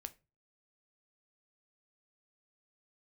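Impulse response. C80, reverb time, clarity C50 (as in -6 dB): 27.0 dB, 0.30 s, 20.5 dB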